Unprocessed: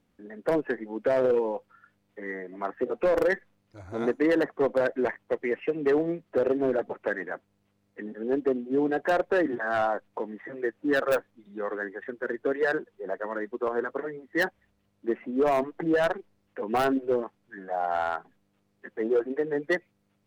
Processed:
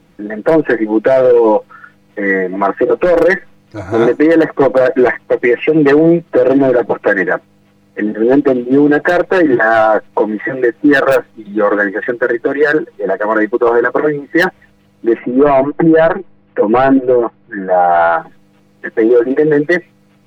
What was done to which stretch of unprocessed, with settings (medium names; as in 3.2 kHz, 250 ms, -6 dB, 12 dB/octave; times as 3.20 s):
12.26–13.28 s: compression 2:1, threshold -34 dBFS
15.19–18.17 s: distance through air 390 m
whole clip: treble shelf 6.2 kHz -5 dB; comb 6.2 ms, depth 58%; loudness maximiser +21.5 dB; trim -1 dB